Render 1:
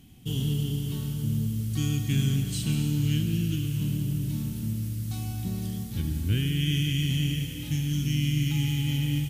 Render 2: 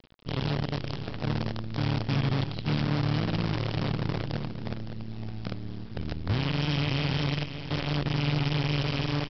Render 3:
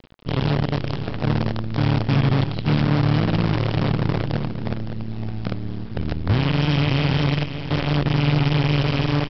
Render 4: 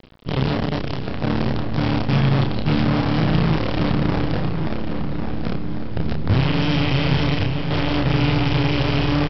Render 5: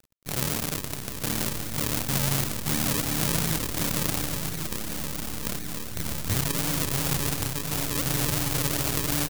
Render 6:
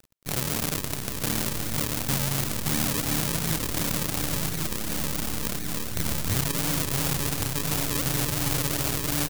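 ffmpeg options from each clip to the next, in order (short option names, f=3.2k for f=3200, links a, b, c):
-af "highshelf=f=3.8k:g=-11.5,aresample=11025,acrusher=bits=5:dc=4:mix=0:aa=0.000001,aresample=44100,aecho=1:1:562:0.316,volume=-3dB"
-af "highshelf=f=4.6k:g=-10.5,volume=8.5dB"
-filter_complex "[0:a]areverse,acompressor=mode=upward:threshold=-31dB:ratio=2.5,areverse,asplit=2[a][b];[b]adelay=31,volume=-4.5dB[c];[a][c]amix=inputs=2:normalize=0,asplit=2[d][e];[e]adelay=1099,lowpass=f=2.3k:p=1,volume=-7dB,asplit=2[f][g];[g]adelay=1099,lowpass=f=2.3k:p=1,volume=0.44,asplit=2[h][i];[i]adelay=1099,lowpass=f=2.3k:p=1,volume=0.44,asplit=2[j][k];[k]adelay=1099,lowpass=f=2.3k:p=1,volume=0.44,asplit=2[l][m];[m]adelay=1099,lowpass=f=2.3k:p=1,volume=0.44[n];[d][f][h][j][l][n]amix=inputs=6:normalize=0"
-af "acrusher=samples=42:mix=1:aa=0.000001:lfo=1:lforange=42:lforate=2.8,aeval=exprs='sgn(val(0))*max(abs(val(0))-0.0112,0)':c=same,crystalizer=i=5.5:c=0,volume=-10.5dB"
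-af "alimiter=limit=-9dB:level=0:latency=1:release=212,volume=3.5dB"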